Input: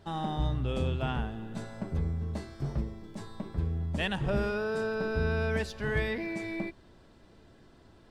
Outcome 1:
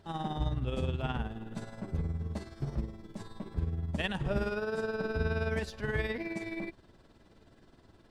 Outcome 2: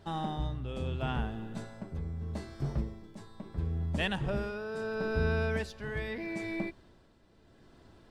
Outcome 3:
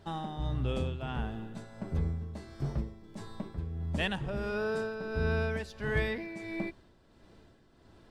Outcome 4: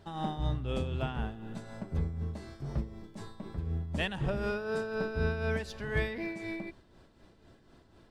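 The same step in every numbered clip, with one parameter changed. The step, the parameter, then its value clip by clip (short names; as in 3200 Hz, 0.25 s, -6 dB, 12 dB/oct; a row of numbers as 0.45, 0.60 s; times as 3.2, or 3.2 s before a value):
tremolo, rate: 19, 0.76, 1.5, 4 Hz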